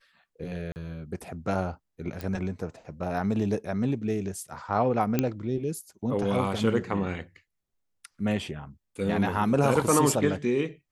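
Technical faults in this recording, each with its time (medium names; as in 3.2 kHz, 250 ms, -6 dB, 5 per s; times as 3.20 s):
0.72–0.76 s: dropout 39 ms
2.21 s: pop
5.19 s: pop -10 dBFS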